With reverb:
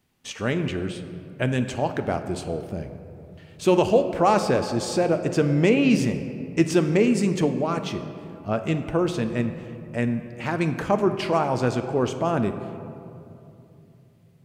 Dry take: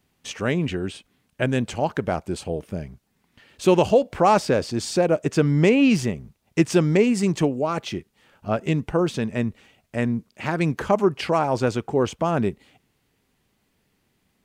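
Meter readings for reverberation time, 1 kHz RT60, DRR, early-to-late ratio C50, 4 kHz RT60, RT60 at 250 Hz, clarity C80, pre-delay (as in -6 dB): 2.9 s, 2.6 s, 7.0 dB, 9.5 dB, 1.3 s, 3.9 s, 10.5 dB, 9 ms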